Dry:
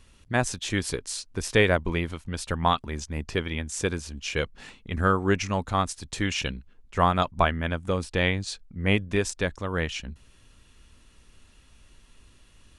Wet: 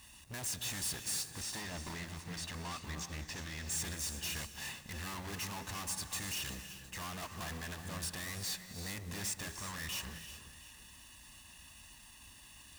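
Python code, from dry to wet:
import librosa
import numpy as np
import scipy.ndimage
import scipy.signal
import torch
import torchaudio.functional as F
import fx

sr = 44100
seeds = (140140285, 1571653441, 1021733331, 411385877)

y = np.clip(10.0 ** (26.5 / 20.0) * x, -1.0, 1.0) / 10.0 ** (26.5 / 20.0)
y = fx.low_shelf(y, sr, hz=220.0, db=-9.5)
y = y + 0.87 * np.pad(y, (int(1.1 * sr / 1000.0), 0))[:len(y)]
y = fx.tube_stage(y, sr, drive_db=46.0, bias=0.3)
y = fx.lowpass(y, sr, hz=6900.0, slope=12, at=(1.28, 3.7))
y = fx.quant_companded(y, sr, bits=6)
y = scipy.signal.sosfilt(scipy.signal.butter(2, 42.0, 'highpass', fs=sr, output='sos'), y)
y = fx.high_shelf(y, sr, hz=5400.0, db=8.0)
y = y + 10.0 ** (-16.5 / 20.0) * np.pad(y, (int(713 * sr / 1000.0), 0))[:len(y)]
y = fx.rev_gated(y, sr, seeds[0], gate_ms=410, shape='rising', drr_db=6.0)
y = fx.upward_expand(y, sr, threshold_db=-52.0, expansion=1.5)
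y = y * librosa.db_to_amplitude(5.5)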